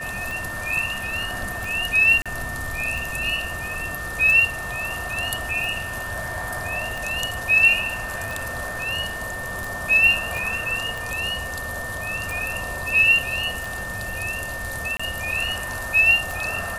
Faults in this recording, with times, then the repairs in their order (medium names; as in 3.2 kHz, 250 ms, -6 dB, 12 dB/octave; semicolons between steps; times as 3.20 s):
tick 45 rpm
whine 1.8 kHz -30 dBFS
2.22–2.26 s: dropout 36 ms
10.37 s: pop
14.97–14.99 s: dropout 25 ms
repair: de-click; band-stop 1.8 kHz, Q 30; interpolate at 2.22 s, 36 ms; interpolate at 14.97 s, 25 ms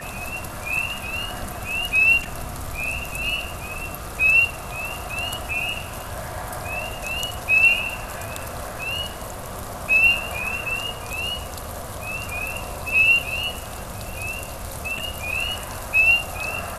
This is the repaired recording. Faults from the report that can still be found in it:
10.37 s: pop